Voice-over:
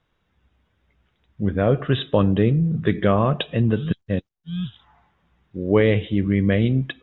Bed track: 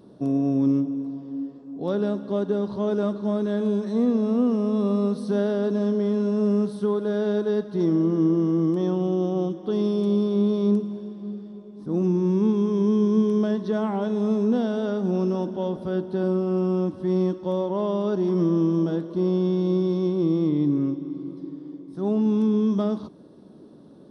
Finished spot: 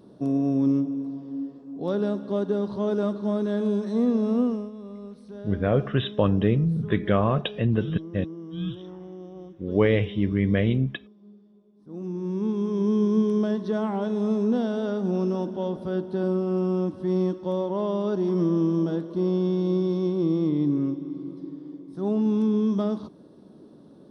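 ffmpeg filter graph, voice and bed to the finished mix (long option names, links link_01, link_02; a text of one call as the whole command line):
ffmpeg -i stem1.wav -i stem2.wav -filter_complex "[0:a]adelay=4050,volume=-3.5dB[link_01];[1:a]volume=14.5dB,afade=type=out:start_time=4.4:duration=0.31:silence=0.158489,afade=type=in:start_time=11.82:duration=1.16:silence=0.16788[link_02];[link_01][link_02]amix=inputs=2:normalize=0" out.wav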